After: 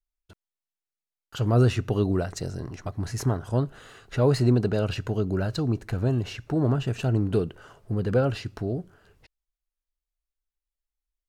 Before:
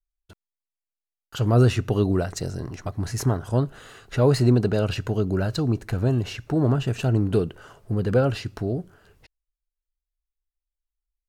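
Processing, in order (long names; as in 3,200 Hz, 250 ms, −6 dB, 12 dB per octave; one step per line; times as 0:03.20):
high-shelf EQ 9,400 Hz −4.5 dB
level −2.5 dB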